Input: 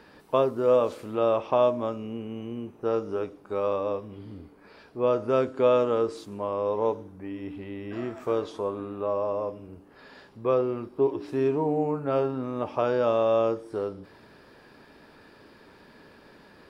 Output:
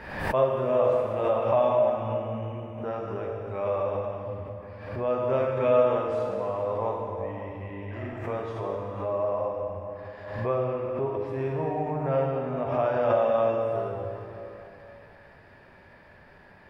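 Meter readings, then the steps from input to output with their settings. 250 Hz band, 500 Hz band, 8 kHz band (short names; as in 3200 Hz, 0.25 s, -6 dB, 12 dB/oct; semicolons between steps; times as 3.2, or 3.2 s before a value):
-4.0 dB, 0.0 dB, n/a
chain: EQ curve 110 Hz 0 dB, 280 Hz -13 dB, 430 Hz -12 dB, 640 Hz -2 dB, 1300 Hz -9 dB, 1900 Hz -1 dB, 3900 Hz -15 dB; plate-style reverb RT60 3 s, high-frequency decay 0.8×, DRR -2 dB; backwards sustainer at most 61 dB/s; gain +2 dB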